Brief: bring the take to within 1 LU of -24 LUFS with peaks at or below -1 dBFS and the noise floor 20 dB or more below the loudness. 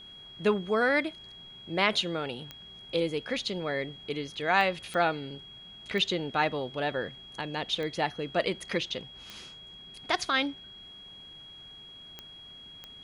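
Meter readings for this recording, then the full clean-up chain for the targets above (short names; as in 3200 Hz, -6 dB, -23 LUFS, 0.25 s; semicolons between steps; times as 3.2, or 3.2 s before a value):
clicks 8; steady tone 3300 Hz; tone level -46 dBFS; loudness -30.0 LUFS; peak -9.5 dBFS; loudness target -24.0 LUFS
-> de-click; notch 3300 Hz, Q 30; gain +6 dB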